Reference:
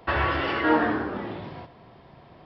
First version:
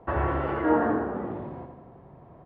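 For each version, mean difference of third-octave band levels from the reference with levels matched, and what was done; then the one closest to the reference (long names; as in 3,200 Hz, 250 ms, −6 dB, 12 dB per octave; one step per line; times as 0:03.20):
4.5 dB: low-pass filter 1,000 Hz 12 dB per octave
repeating echo 85 ms, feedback 55%, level −8 dB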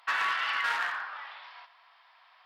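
13.0 dB: gain into a clipping stage and back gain 20 dB
inverse Chebyshev high-pass filter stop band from 310 Hz, stop band 60 dB
highs frequency-modulated by the lows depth 0.39 ms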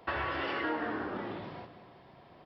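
3.0 dB: low-shelf EQ 140 Hz −7.5 dB
downward compressor 6 to 1, threshold −26 dBFS, peak gain reduction 9.5 dB
on a send: repeating echo 180 ms, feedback 47%, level −13 dB
on the sum: level −4.5 dB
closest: third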